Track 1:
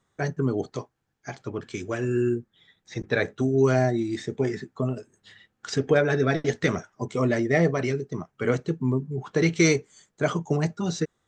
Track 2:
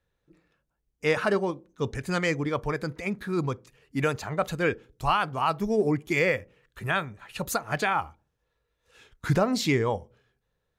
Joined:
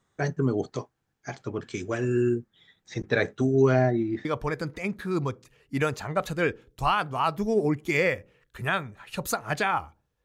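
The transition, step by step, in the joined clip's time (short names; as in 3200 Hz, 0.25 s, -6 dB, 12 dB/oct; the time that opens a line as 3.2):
track 1
3.62–4.25 LPF 4900 Hz -> 1400 Hz
4.25 switch to track 2 from 2.47 s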